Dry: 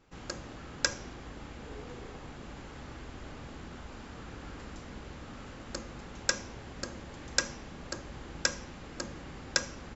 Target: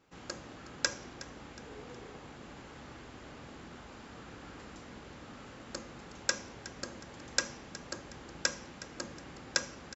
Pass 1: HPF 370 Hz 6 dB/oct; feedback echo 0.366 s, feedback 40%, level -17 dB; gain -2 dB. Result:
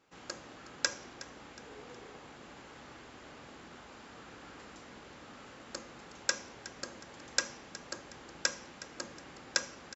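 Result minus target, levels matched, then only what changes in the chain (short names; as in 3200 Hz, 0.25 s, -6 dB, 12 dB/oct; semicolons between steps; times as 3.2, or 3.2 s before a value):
125 Hz band -7.5 dB
change: HPF 130 Hz 6 dB/oct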